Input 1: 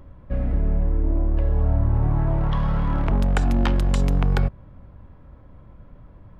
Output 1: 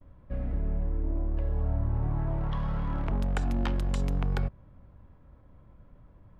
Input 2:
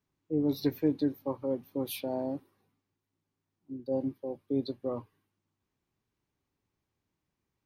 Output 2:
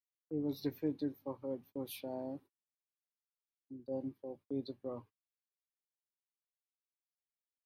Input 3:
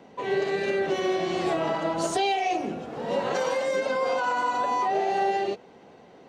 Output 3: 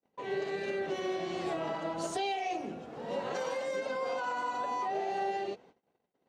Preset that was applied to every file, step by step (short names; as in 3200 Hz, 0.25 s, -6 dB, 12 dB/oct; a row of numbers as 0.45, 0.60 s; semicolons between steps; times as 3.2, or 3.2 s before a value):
gate -47 dBFS, range -36 dB; gain -8.5 dB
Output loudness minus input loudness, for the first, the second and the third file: -8.5, -8.5, -8.5 LU